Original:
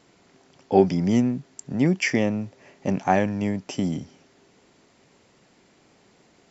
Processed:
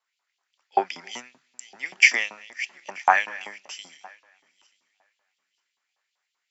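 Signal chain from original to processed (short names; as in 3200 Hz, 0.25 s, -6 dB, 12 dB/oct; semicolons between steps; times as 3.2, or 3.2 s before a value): regenerating reverse delay 0.467 s, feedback 52%, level -12 dB; LFO high-pass saw up 5.2 Hz 930–3500 Hz; three-band expander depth 70%; gain -2 dB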